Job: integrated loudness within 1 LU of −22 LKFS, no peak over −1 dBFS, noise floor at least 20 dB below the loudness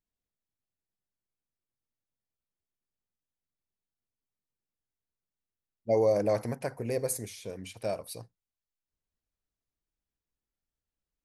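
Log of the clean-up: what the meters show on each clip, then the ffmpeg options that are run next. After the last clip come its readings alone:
integrated loudness −30.5 LKFS; sample peak −15.5 dBFS; target loudness −22.0 LKFS
→ -af "volume=8.5dB"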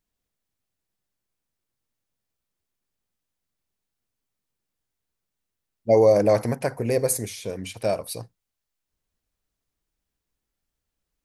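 integrated loudness −22.0 LKFS; sample peak −7.0 dBFS; background noise floor −84 dBFS

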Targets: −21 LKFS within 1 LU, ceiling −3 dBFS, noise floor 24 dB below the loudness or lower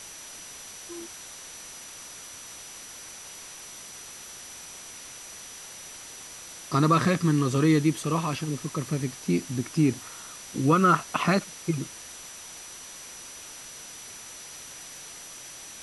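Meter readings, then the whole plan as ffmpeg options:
interfering tone 5,900 Hz; level of the tone −45 dBFS; background noise floor −44 dBFS; target noise floor −50 dBFS; integrated loudness −26.0 LKFS; sample peak −9.0 dBFS; target loudness −21.0 LKFS
→ -af "bandreject=frequency=5900:width=30"
-af "afftdn=noise_reduction=6:noise_floor=-44"
-af "volume=5dB"

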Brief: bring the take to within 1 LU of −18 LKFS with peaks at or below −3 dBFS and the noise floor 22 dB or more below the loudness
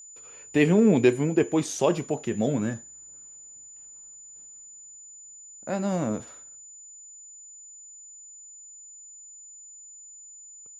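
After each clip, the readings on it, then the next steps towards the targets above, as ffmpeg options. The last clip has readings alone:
interfering tone 7,000 Hz; level of the tone −44 dBFS; integrated loudness −24.5 LKFS; sample peak −7.5 dBFS; target loudness −18.0 LKFS
→ -af "bandreject=frequency=7000:width=30"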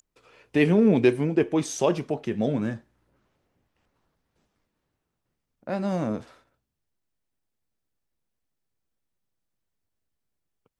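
interfering tone none found; integrated loudness −24.5 LKFS; sample peak −7.5 dBFS; target loudness −18.0 LKFS
→ -af "volume=6.5dB,alimiter=limit=-3dB:level=0:latency=1"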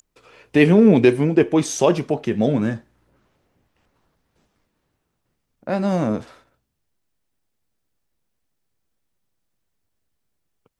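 integrated loudness −18.0 LKFS; sample peak −3.0 dBFS; background noise floor −75 dBFS

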